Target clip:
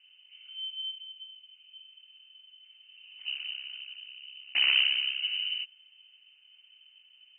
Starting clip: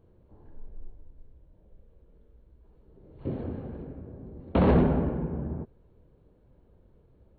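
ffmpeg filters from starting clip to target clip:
-filter_complex "[0:a]asettb=1/sr,asplit=3[s0][s1][s2];[s0]atrim=end=3.224[s3];[s1]atrim=start=3.22:end=5.23,asetpts=PTS-STARTPTS,afade=t=in:d=0.004:c=qsin,afade=t=out:st=2.006:d=0.004:c=qsin,tremolo=f=67:d=0.919[s4];[s2]atrim=start=5.226[s5];[s3][s4]acrossfade=d=0.004:c1=hsin:c2=qsin[s6];[s6][s5]acrossfade=d=0.004:c1=qsin:c2=hsin,lowpass=f=2600:t=q:w=0.5098,lowpass=f=2600:t=q:w=0.6013,lowpass=f=2600:t=q:w=0.9,lowpass=f=2600:t=q:w=2.563,afreqshift=-3100"

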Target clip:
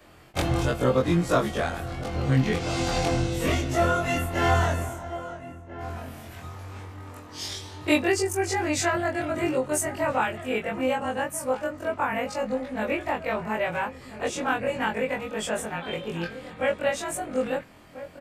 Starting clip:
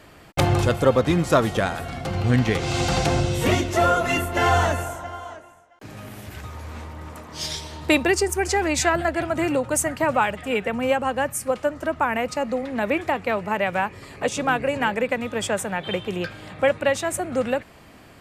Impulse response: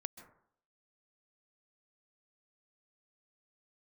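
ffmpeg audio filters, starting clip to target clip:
-filter_complex "[0:a]afftfilt=real='re':imag='-im':win_size=2048:overlap=0.75,asplit=2[s0][s1];[s1]adelay=1341,volume=0.224,highshelf=f=4000:g=-30.2[s2];[s0][s2]amix=inputs=2:normalize=0"

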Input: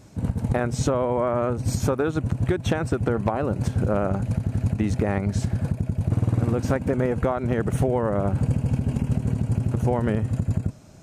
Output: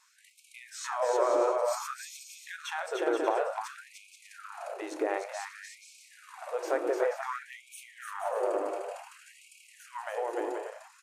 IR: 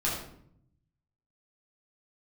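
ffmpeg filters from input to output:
-filter_complex "[0:a]equalizer=f=600:w=0.51:g=3.5,aecho=1:1:300|480|588|652.8|691.7:0.631|0.398|0.251|0.158|0.1,asplit=2[s0][s1];[1:a]atrim=start_sample=2205[s2];[s1][s2]afir=irnorm=-1:irlink=0,volume=0.15[s3];[s0][s3]amix=inputs=2:normalize=0,afftfilt=real='re*gte(b*sr/1024,290*pow(2200/290,0.5+0.5*sin(2*PI*0.55*pts/sr)))':imag='im*gte(b*sr/1024,290*pow(2200/290,0.5+0.5*sin(2*PI*0.55*pts/sr)))':win_size=1024:overlap=0.75,volume=0.422"

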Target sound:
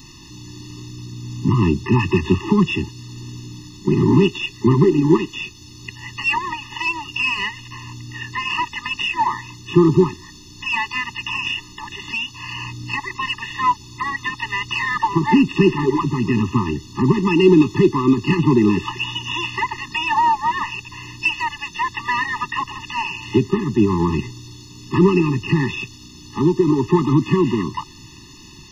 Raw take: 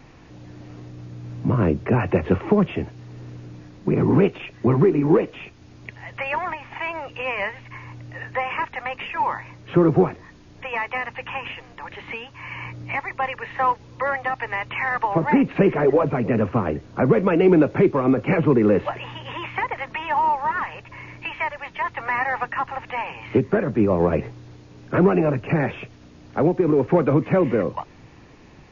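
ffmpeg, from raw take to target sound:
-filter_complex "[0:a]aexciter=amount=3.8:drive=8.9:freq=2800,asplit=2[s0][s1];[s1]asetrate=88200,aresample=44100,atempo=0.5,volume=0.126[s2];[s0][s2]amix=inputs=2:normalize=0,afftfilt=real='re*eq(mod(floor(b*sr/1024/420),2),0)':imag='im*eq(mod(floor(b*sr/1024/420),2),0)':win_size=1024:overlap=0.75,volume=1.58"

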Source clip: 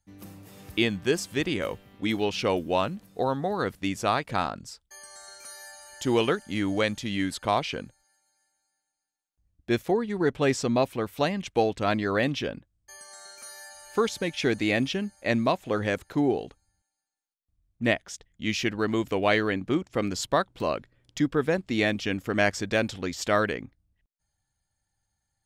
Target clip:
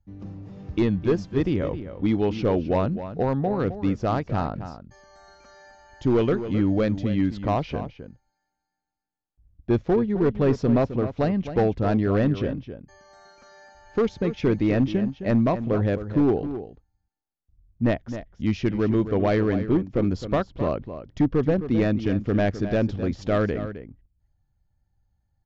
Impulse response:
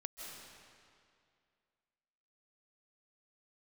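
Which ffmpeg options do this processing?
-filter_complex "[0:a]tiltshelf=f=1300:g=8,aresample=16000,asoftclip=type=hard:threshold=0.224,aresample=44100,lowpass=f=6100:w=0.5412,lowpass=f=6100:w=1.3066,lowshelf=f=130:g=10,asplit=2[s0][s1];[s1]adelay=262.4,volume=0.282,highshelf=f=4000:g=-5.9[s2];[s0][s2]amix=inputs=2:normalize=0,volume=0.668"

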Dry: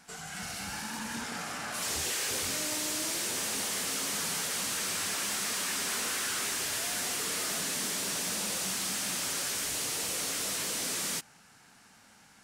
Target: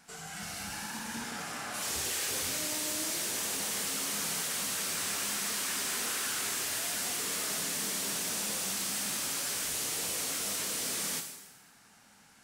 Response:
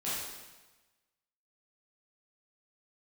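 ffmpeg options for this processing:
-filter_complex "[0:a]asplit=2[s0][s1];[1:a]atrim=start_sample=2205,highshelf=f=9800:g=12[s2];[s1][s2]afir=irnorm=-1:irlink=0,volume=0.299[s3];[s0][s3]amix=inputs=2:normalize=0,volume=0.631"

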